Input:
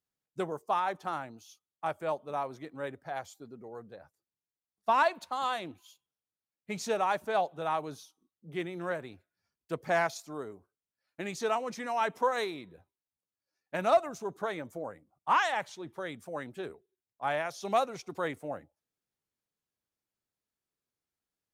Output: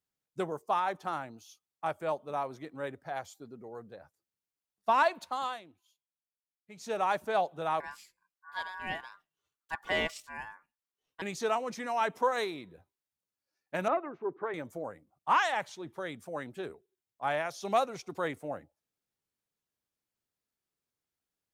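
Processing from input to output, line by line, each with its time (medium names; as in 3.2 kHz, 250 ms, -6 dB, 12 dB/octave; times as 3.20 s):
5.35–7.05 s: dip -14.5 dB, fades 0.29 s
7.80–11.22 s: ring modulator 1.3 kHz
13.88–14.54 s: cabinet simulation 180–2100 Hz, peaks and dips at 200 Hz -8 dB, 350 Hz +8 dB, 660 Hz -9 dB, 1.4 kHz -3 dB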